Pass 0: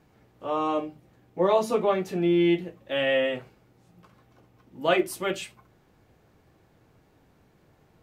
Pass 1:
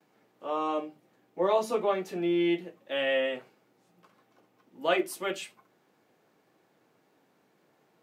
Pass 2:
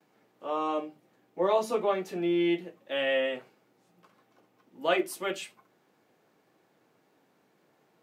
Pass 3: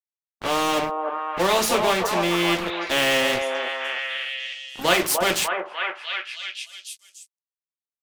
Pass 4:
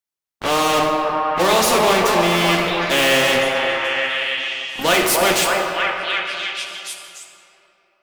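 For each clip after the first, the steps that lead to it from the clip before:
noise gate with hold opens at −56 dBFS; Bessel high-pass filter 260 Hz, order 4; level −3 dB
no processing that can be heard
dead-zone distortion −47.5 dBFS; echo through a band-pass that steps 298 ms, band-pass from 710 Hz, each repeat 0.7 octaves, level −4 dB; every bin compressed towards the loudest bin 2 to 1; level +9 dB
soft clipping −15 dBFS, distortion −15 dB; convolution reverb RT60 2.9 s, pre-delay 45 ms, DRR 3.5 dB; level +6 dB

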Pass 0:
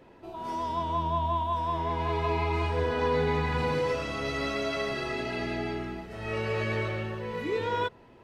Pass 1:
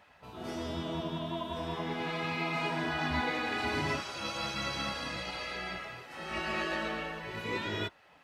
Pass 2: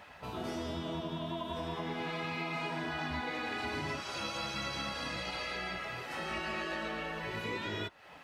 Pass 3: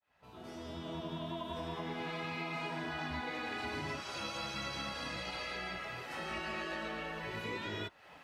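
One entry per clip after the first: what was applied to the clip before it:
gate on every frequency bin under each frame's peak −10 dB weak; high-pass filter 61 Hz; level +2.5 dB
downward compressor 4 to 1, threshold −44 dBFS, peak gain reduction 14 dB; level +7.5 dB
fade in at the beginning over 1.10 s; level −2.5 dB

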